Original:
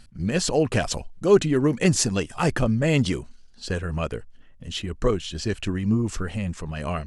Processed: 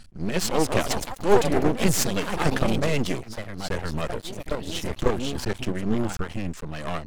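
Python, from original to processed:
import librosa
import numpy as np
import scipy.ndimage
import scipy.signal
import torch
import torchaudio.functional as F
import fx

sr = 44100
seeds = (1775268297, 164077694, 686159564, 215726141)

y = fx.echo_pitch(x, sr, ms=259, semitones=3, count=3, db_per_echo=-6.0)
y = np.maximum(y, 0.0)
y = y * 10.0 ** (2.5 / 20.0)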